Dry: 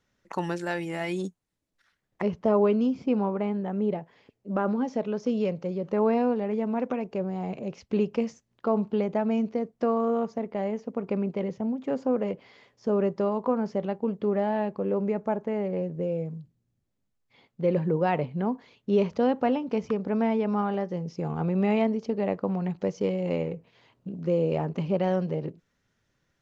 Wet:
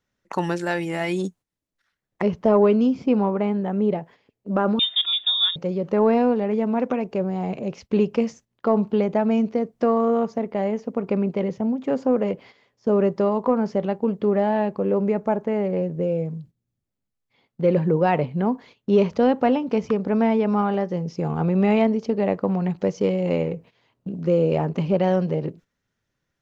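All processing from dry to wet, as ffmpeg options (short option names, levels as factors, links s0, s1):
-filter_complex "[0:a]asettb=1/sr,asplit=3[s0][s1][s2];[s0]atrim=end=4.794[s3];[s1]atrim=start=4.79:end=5.56,asetpts=PTS-STARTPTS,afade=t=in:d=0.004:c=qsin,afade=t=out:st=0.766:d=0.004:c=qsin,aecho=1:1:2.8:0.52,atrim=end_sample=33957,lowpass=f=3300:t=q:w=0.5098,lowpass=f=3300:t=q:w=0.6013,lowpass=f=3300:t=q:w=0.9,lowpass=f=3300:t=q:w=2.563,afreqshift=-3900[s4];[s2]atrim=start=5.556[s5];[s3][s4]acrossfade=d=0.004:c1=hsin:c2=qsin[s6];[s6][s5]acrossfade=d=0.004:c1=qsin:c2=hsin,acontrast=41,agate=range=0.316:threshold=0.00631:ratio=16:detection=peak"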